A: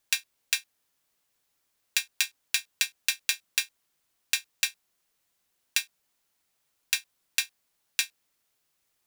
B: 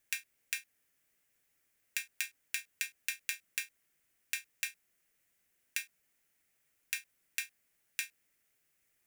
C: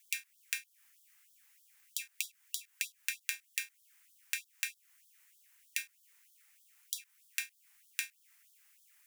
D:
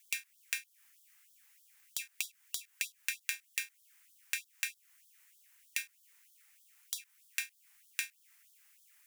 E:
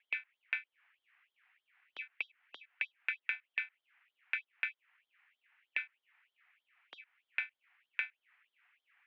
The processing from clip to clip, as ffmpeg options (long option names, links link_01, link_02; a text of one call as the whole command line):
ffmpeg -i in.wav -af "equalizer=frequency=1000:width_type=o:width=1:gain=-9,equalizer=frequency=2000:width_type=o:width=1:gain=7,equalizer=frequency=4000:width_type=o:width=1:gain=-9,acompressor=threshold=-27dB:ratio=6,alimiter=limit=-9.5dB:level=0:latency=1:release=51" out.wav
ffmpeg -i in.wav -af "acompressor=threshold=-47dB:ratio=2.5,acrusher=bits=4:mode=log:mix=0:aa=0.000001,afftfilt=real='re*gte(b*sr/1024,740*pow(3200/740,0.5+0.5*sin(2*PI*3.2*pts/sr)))':imag='im*gte(b*sr/1024,740*pow(3200/740,0.5+0.5*sin(2*PI*3.2*pts/sr)))':win_size=1024:overlap=0.75,volume=10.5dB" out.wav
ffmpeg -i in.wav -af "asoftclip=type=tanh:threshold=-8.5dB,volume=1dB" out.wav
ffmpeg -i in.wav -af "highpass=frequency=410:width_type=q:width=0.5412,highpass=frequency=410:width_type=q:width=1.307,lowpass=frequency=2800:width_type=q:width=0.5176,lowpass=frequency=2800:width_type=q:width=0.7071,lowpass=frequency=2800:width_type=q:width=1.932,afreqshift=-77,volume=3.5dB" out.wav